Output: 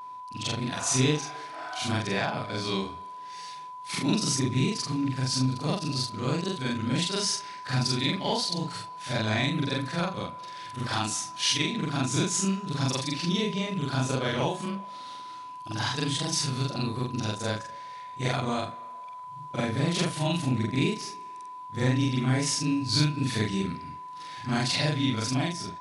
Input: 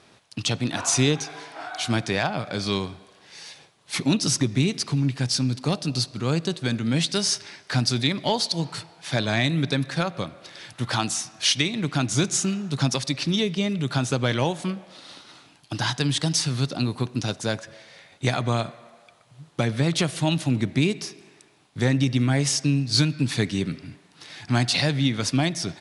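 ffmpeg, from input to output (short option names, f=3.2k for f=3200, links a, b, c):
-af "afftfilt=real='re':imag='-im':win_size=4096:overlap=0.75,dynaudnorm=f=160:g=7:m=4dB,aeval=exprs='val(0)+0.0178*sin(2*PI*1000*n/s)':c=same,volume=-3.5dB"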